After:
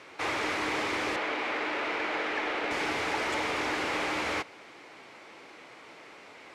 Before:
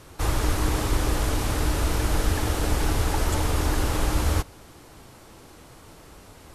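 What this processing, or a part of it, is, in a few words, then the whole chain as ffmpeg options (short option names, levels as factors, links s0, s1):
intercom: -filter_complex "[0:a]asettb=1/sr,asplit=3[s0][s1][s2];[s0]atrim=end=1.164[s3];[s1]atrim=start=1.16:end=2.71,asetpts=PTS-STARTPTS,afade=t=in:d=0.004:c=qsin,afade=t=out:st=1.546:d=0.004:c=qsin,acrossover=split=230 3900:gain=0.141 1 0.178[s4][s5][s6];[s4][s5][s6]amix=inputs=3:normalize=0[s7];[s2]atrim=start=2.706[s8];[s3][s7]acrossfade=d=0.004:c1=hsin:c2=qsin[s9];[s9][s8]acrossfade=d=0.004:c1=qsin:c2=hsin,highpass=350,lowpass=4500,equalizer=f=2200:t=o:w=0.56:g=10,asoftclip=type=tanh:threshold=0.075"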